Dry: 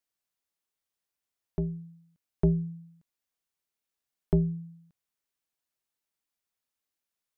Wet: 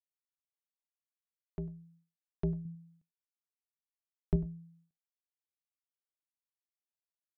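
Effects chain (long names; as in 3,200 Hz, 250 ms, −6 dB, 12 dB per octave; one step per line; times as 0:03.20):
0:02.65–0:04.36: low-shelf EQ 190 Hz +8 dB
single-tap delay 98 ms −16 dB
downward expander −53 dBFS
level −9 dB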